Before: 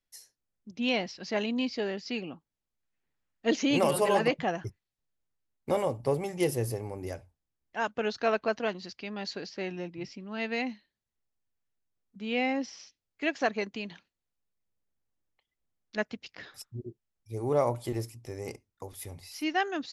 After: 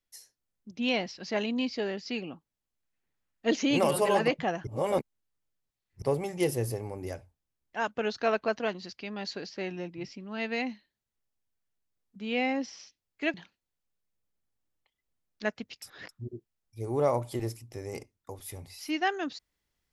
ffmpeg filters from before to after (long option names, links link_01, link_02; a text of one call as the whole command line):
ffmpeg -i in.wav -filter_complex "[0:a]asplit=6[link_01][link_02][link_03][link_04][link_05][link_06];[link_01]atrim=end=4.672[link_07];[link_02]atrim=start=4.668:end=6.022,asetpts=PTS-STARTPTS,areverse[link_08];[link_03]atrim=start=6.018:end=13.342[link_09];[link_04]atrim=start=13.868:end=16.352[link_10];[link_05]atrim=start=16.348:end=16.622,asetpts=PTS-STARTPTS,areverse[link_11];[link_06]atrim=start=16.618[link_12];[link_07][link_08]acrossfade=duration=0.004:curve1=hsin:curve2=hsin[link_13];[link_13][link_09]acrossfade=duration=0.004:curve1=hsin:curve2=hsin[link_14];[link_14][link_10]acrossfade=duration=0.004:curve1=hsin:curve2=hsin[link_15];[link_15][link_11]acrossfade=duration=0.004:curve1=hsin:curve2=hsin[link_16];[link_16][link_12]acrossfade=duration=0.004:curve1=hsin:curve2=hsin" out.wav